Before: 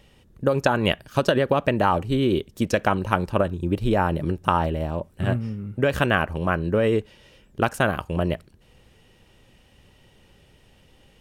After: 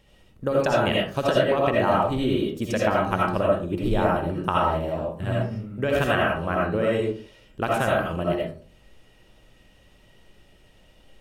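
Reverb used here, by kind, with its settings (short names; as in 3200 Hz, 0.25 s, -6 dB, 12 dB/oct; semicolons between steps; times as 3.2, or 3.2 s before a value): digital reverb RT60 0.44 s, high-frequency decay 0.45×, pre-delay 40 ms, DRR -4 dB; gain -5.5 dB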